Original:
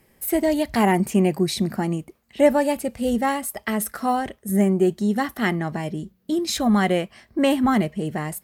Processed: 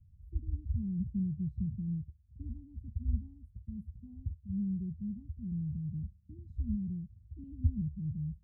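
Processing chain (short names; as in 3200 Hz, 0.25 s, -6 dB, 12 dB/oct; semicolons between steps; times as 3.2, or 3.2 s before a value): inverse Chebyshev low-pass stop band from 550 Hz, stop band 70 dB; bell 78 Hz +14 dB 0.77 oct; gain +2 dB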